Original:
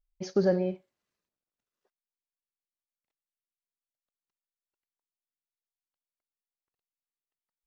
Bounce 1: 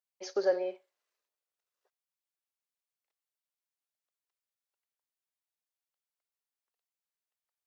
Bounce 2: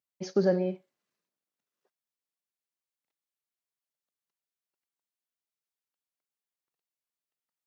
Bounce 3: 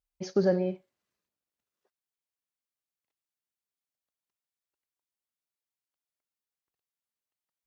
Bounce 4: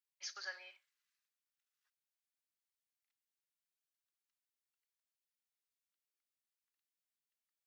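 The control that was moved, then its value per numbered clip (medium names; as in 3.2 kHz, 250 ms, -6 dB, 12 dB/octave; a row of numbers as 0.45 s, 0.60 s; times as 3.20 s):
high-pass, cutoff frequency: 440 Hz, 130 Hz, 41 Hz, 1.4 kHz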